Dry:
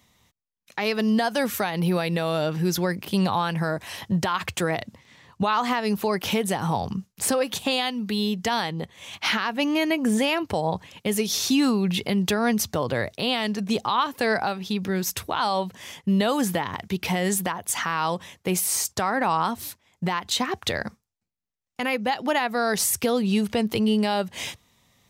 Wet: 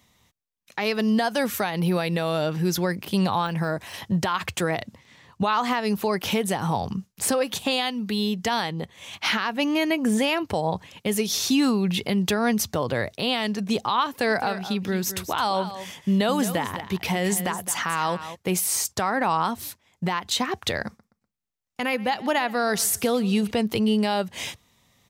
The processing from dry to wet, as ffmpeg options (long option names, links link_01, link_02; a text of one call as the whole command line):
ffmpeg -i in.wav -filter_complex "[0:a]asettb=1/sr,asplit=3[link_01][link_02][link_03];[link_01]atrim=end=3.464[link_04];[link_02]atrim=start=3.46:end=3.94,asetpts=PTS-STARTPTS,afade=type=in:duration=0.004:curve=qsin,afade=type=out:start_time=0.476:duration=0.004:curve=qsin,deesser=0.95[link_05];[link_03]atrim=start=3.936[link_06];[link_04][link_05]acrossfade=duration=0.004:curve1=hsin:curve2=qsin[link_07];[link_07][link_06]acrossfade=duration=0.004:curve1=qsin:curve2=hsin,asplit=3[link_08][link_09][link_10];[link_08]afade=type=out:start_time=14.27:duration=0.02[link_11];[link_09]aecho=1:1:214:0.251,afade=type=in:start_time=14.27:duration=0.02,afade=type=out:start_time=18.34:duration=0.02[link_12];[link_10]afade=type=in:start_time=18.34:duration=0.02[link_13];[link_11][link_12][link_13]amix=inputs=3:normalize=0,asettb=1/sr,asplit=3[link_14][link_15][link_16];[link_14]atrim=end=20.874[link_17];[link_15]atrim=start=20.87:end=23.51,asetpts=PTS-STARTPTS,afade=type=in:duration=0.004:curve=qsin,afade=type=out:start_time=2.636:duration=0.004:curve=qsin,aecho=1:1:123|246|369:0.1|0.034|0.0116,atrim=end_sample=116424[link_18];[link_16]atrim=start=23.506[link_19];[link_17][link_18]acrossfade=duration=0.004:curve1=hsin:curve2=qsin[link_20];[link_20][link_19]acrossfade=duration=0.004:curve1=qsin:curve2=hsin" out.wav